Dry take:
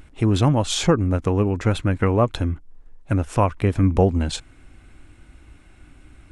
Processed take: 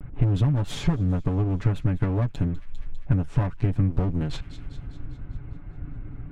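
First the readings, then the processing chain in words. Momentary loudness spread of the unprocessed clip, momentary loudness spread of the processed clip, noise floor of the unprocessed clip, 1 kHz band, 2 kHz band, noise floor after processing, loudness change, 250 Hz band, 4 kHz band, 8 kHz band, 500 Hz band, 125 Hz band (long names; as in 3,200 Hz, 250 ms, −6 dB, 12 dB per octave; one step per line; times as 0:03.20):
9 LU, 16 LU, −50 dBFS, −13.0 dB, −9.0 dB, −41 dBFS, −4.5 dB, −6.0 dB, below −10 dB, below −15 dB, −12.5 dB, −1.5 dB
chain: lower of the sound and its delayed copy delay 7 ms
low-pass that shuts in the quiet parts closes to 1,300 Hz, open at −18 dBFS
on a send: delay with a high-pass on its return 200 ms, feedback 59%, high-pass 2,700 Hz, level −18.5 dB
on the sum: downward compressor 6 to 1, threshold −33 dBFS, peak gain reduction 20 dB
bass and treble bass +12 dB, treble −7 dB
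level +3.5 dB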